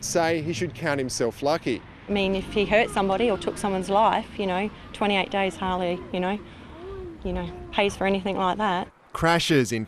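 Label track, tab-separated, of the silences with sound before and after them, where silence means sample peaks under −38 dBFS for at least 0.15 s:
8.870000	9.150000	silence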